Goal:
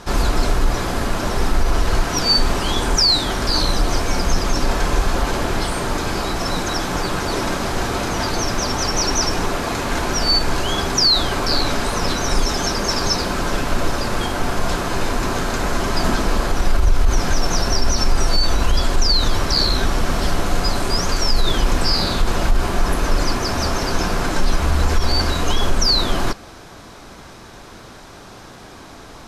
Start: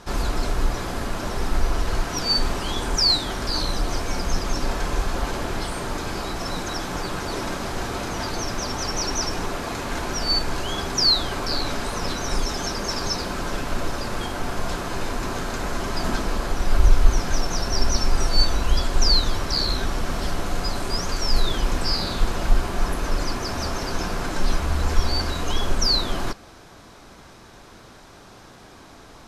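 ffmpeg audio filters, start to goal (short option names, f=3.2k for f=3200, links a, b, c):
-af "alimiter=level_in=12dB:limit=-1dB:release=50:level=0:latency=1,volume=-5.5dB"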